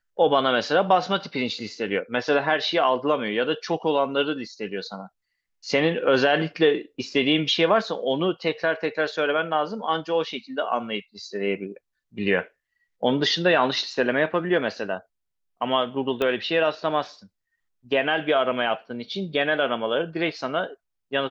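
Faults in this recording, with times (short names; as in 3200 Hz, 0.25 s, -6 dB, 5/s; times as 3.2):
16.22 pop -13 dBFS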